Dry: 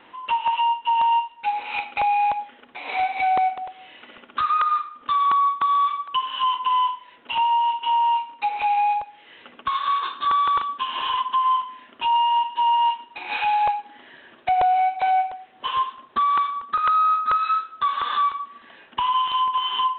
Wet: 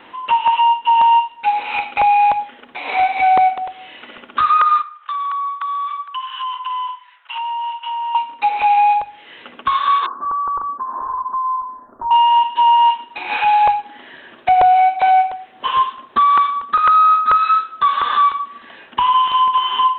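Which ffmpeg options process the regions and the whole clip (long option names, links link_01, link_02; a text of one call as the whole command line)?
ffmpeg -i in.wav -filter_complex "[0:a]asettb=1/sr,asplit=3[link_01][link_02][link_03];[link_01]atrim=end=4.824[link_04];[link_02]atrim=start=4.82:end=8.15,asetpts=PTS-STARTPTS,afade=type=in:duration=0.004:curve=qsin,afade=type=out:start_time=3.326:duration=0.004:curve=qsin,highpass=frequency=1100:width=0.5412,highpass=frequency=1100:width=1.3066,highshelf=frequency=2100:gain=-10.5,acompressor=threshold=-28dB:ratio=4:attack=3.2:release=140:knee=1:detection=peak[link_05];[link_03]atrim=start=8.146[link_06];[link_04][link_05]acrossfade=duration=0.004:curve1=hsin:curve2=qsin[link_07];[link_07][link_06]acrossfade=duration=0.004:curve1=qsin:curve2=hsin,asettb=1/sr,asplit=3[link_08][link_09][link_10];[link_08]atrim=end=10.064[link_11];[link_09]atrim=start=10.06:end=12.11,asetpts=PTS-STARTPTS,afade=type=in:duration=0.004:curve=qsin,afade=type=out:start_time=2.046:duration=0.004:curve=qsin,asubboost=boost=8:cutoff=83,acompressor=threshold=-27dB:ratio=3:attack=3.2:release=140:knee=1:detection=peak,asuperstop=centerf=3000:order=8:qfactor=0.55[link_12];[link_10]atrim=start=12.106[link_13];[link_11][link_12]acrossfade=duration=0.004:curve1=hsin:curve2=qsin[link_14];[link_14][link_13]acrossfade=duration=0.004:curve1=qsin:curve2=hsin,acrossover=split=2700[link_15][link_16];[link_16]acompressor=threshold=-39dB:ratio=4:attack=1:release=60[link_17];[link_15][link_17]amix=inputs=2:normalize=0,bandreject=frequency=50:width_type=h:width=6,bandreject=frequency=100:width_type=h:width=6,bandreject=frequency=150:width_type=h:width=6,volume=7.5dB" out.wav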